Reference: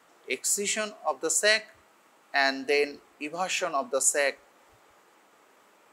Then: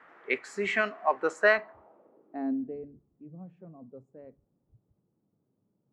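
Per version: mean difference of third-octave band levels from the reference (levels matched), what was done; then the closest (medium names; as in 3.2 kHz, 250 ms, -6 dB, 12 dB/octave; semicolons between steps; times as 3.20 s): 13.0 dB: low-pass sweep 1.8 kHz -> 140 Hz, 1.32–2.87 s; trim +1 dB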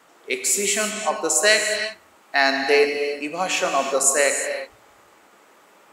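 6.0 dB: gated-style reverb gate 380 ms flat, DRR 4 dB; trim +5.5 dB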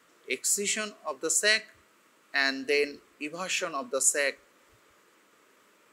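1.5 dB: peaking EQ 780 Hz -14.5 dB 0.49 oct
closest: third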